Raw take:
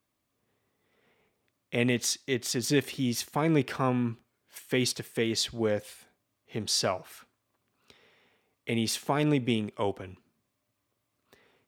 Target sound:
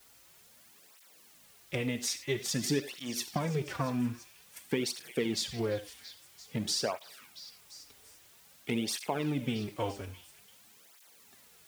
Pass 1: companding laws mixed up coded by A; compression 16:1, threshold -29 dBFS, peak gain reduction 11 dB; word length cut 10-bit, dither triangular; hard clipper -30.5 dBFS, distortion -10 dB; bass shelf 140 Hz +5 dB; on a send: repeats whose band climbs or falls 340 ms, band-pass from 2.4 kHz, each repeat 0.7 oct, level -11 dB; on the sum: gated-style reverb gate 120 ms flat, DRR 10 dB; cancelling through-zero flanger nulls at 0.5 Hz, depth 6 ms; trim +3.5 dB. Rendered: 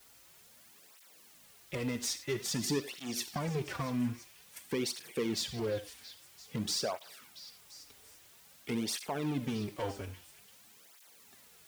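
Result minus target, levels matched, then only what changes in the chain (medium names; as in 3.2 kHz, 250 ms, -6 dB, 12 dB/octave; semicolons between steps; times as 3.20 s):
hard clipper: distortion +22 dB
change: hard clipper -19.5 dBFS, distortion -32 dB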